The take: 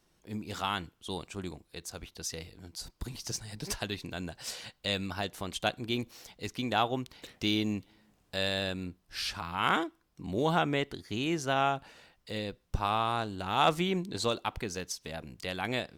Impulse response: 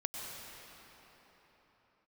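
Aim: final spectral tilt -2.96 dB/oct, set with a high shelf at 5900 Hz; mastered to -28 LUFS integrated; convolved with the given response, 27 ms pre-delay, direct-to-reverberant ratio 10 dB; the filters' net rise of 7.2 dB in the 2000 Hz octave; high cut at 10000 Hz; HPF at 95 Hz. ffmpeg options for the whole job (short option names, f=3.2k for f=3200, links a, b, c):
-filter_complex "[0:a]highpass=95,lowpass=10k,equalizer=f=2k:t=o:g=9,highshelf=f=5.9k:g=7.5,asplit=2[a][b];[1:a]atrim=start_sample=2205,adelay=27[c];[b][c]afir=irnorm=-1:irlink=0,volume=-12dB[d];[a][d]amix=inputs=2:normalize=0,volume=2dB"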